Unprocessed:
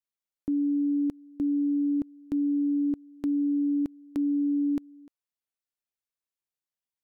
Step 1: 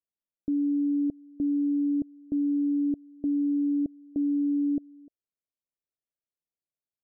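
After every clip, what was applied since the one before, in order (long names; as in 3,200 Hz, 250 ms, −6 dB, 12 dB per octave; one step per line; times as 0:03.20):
elliptic low-pass filter 660 Hz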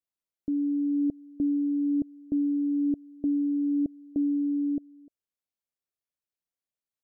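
speech leveller 0.5 s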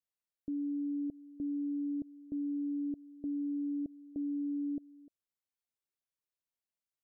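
brickwall limiter −27.5 dBFS, peak gain reduction 6.5 dB
level −4.5 dB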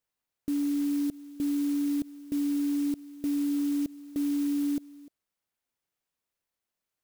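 converter with an unsteady clock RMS 0.06 ms
level +7.5 dB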